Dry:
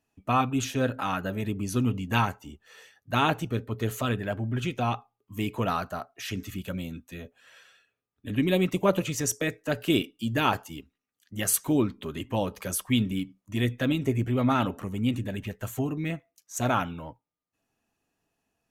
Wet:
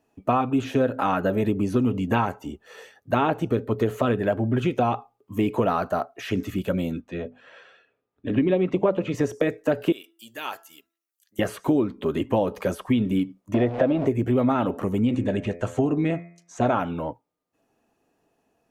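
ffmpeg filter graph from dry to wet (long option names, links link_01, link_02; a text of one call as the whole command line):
ffmpeg -i in.wav -filter_complex "[0:a]asettb=1/sr,asplit=3[link_01][link_02][link_03];[link_01]atrim=end=7.014[link_04];[link_02]atrim=start=7.01:end=9.15,asetpts=PTS-STARTPTS,afade=type=in:duration=0.004:curve=qsin,afade=type=out:start_time=2.136:duration=0.004:curve=qsin,lowpass=3600,bandreject=frequency=50:width_type=h:width=6,bandreject=frequency=100:width_type=h:width=6,bandreject=frequency=150:width_type=h:width=6,bandreject=frequency=200:width_type=h:width=6,bandreject=frequency=250:width_type=h:width=6[link_05];[link_03]atrim=start=9.146[link_06];[link_04][link_05]acrossfade=duration=0.004:curve1=hsin:curve2=qsin[link_07];[link_07][link_06]acrossfade=duration=0.004:curve1=qsin:curve2=hsin,asettb=1/sr,asplit=3[link_08][link_09][link_10];[link_08]atrim=end=9.924[link_11];[link_09]atrim=start=9.92:end=11.39,asetpts=PTS-STARTPTS,afade=type=in:duration=0.004:curve=qsin,afade=type=out:start_time=1.466:duration=0.004:curve=qsin,aderivative,bandreject=frequency=334.8:width_type=h:width=4,bandreject=frequency=669.6:width_type=h:width=4,bandreject=frequency=1004.4:width_type=h:width=4,bandreject=frequency=1339.2:width_type=h:width=4,bandreject=frequency=1674:width_type=h:width=4,bandreject=frequency=2008.8:width_type=h:width=4[link_12];[link_10]atrim=start=11.386[link_13];[link_11][link_12]acrossfade=duration=0.004:curve1=hsin:curve2=qsin[link_14];[link_14][link_13]acrossfade=duration=0.004:curve1=qsin:curve2=hsin,asettb=1/sr,asplit=3[link_15][link_16][link_17];[link_15]atrim=end=13.544[link_18];[link_16]atrim=start=13.54:end=14.07,asetpts=PTS-STARTPTS,afade=type=in:duration=0.004:curve=qsin,afade=type=out:start_time=0.526:duration=0.004:curve=qsin,aeval=exprs='val(0)+0.5*0.0237*sgn(val(0))':channel_layout=same,lowpass=3100,equalizer=frequency=650:width_type=o:width=0.66:gain=12.5[link_19];[link_17]atrim=start=14.066[link_20];[link_18][link_19]acrossfade=duration=0.004:curve1=hsin:curve2=qsin[link_21];[link_21][link_20]acrossfade=duration=0.004:curve1=qsin:curve2=hsin,asettb=1/sr,asplit=3[link_22][link_23][link_24];[link_22]atrim=end=15.024[link_25];[link_23]atrim=start=15.02:end=16.78,asetpts=PTS-STARTPTS,afade=type=in:duration=0.004:curve=qsin,afade=type=out:start_time=1.756:duration=0.004:curve=qsin,lowpass=frequency=8500:width=0.5412,lowpass=frequency=8500:width=1.3066,bandreject=frequency=85.86:width_type=h:width=4,bandreject=frequency=171.72:width_type=h:width=4,bandreject=frequency=257.58:width_type=h:width=4,bandreject=frequency=343.44:width_type=h:width=4,bandreject=frequency=429.3:width_type=h:width=4,bandreject=frequency=515.16:width_type=h:width=4,bandreject=frequency=601.02:width_type=h:width=4,bandreject=frequency=686.88:width_type=h:width=4,bandreject=frequency=772.74:width_type=h:width=4,bandreject=frequency=858.6:width_type=h:width=4,bandreject=frequency=944.46:width_type=h:width=4,bandreject=frequency=1030.32:width_type=h:width=4,bandreject=frequency=1116.18:width_type=h:width=4,bandreject=frequency=1202.04:width_type=h:width=4,bandreject=frequency=1287.9:width_type=h:width=4,bandreject=frequency=1373.76:width_type=h:width=4,bandreject=frequency=1459.62:width_type=h:width=4,bandreject=frequency=1545.48:width_type=h:width=4,bandreject=frequency=1631.34:width_type=h:width=4,bandreject=frequency=1717.2:width_type=h:width=4,bandreject=frequency=1803.06:width_type=h:width=4,bandreject=frequency=1888.92:width_type=h:width=4,bandreject=frequency=1974.78:width_type=h:width=4,bandreject=frequency=2060.64:width_type=h:width=4,bandreject=frequency=2146.5:width_type=h:width=4,bandreject=frequency=2232.36:width_type=h:width=4,bandreject=frequency=2318.22:width_type=h:width=4,bandreject=frequency=2404.08:width_type=h:width=4,bandreject=frequency=2489.94:width_type=h:width=4[link_26];[link_24]atrim=start=16.776[link_27];[link_25][link_26]acrossfade=duration=0.004:curve1=hsin:curve2=qsin[link_28];[link_28][link_27]acrossfade=duration=0.004:curve1=qsin:curve2=hsin,acrossover=split=3300[link_29][link_30];[link_30]acompressor=threshold=-47dB:ratio=4:attack=1:release=60[link_31];[link_29][link_31]amix=inputs=2:normalize=0,equalizer=frequency=470:width_type=o:width=2.7:gain=11.5,acompressor=threshold=-20dB:ratio=6,volume=2dB" out.wav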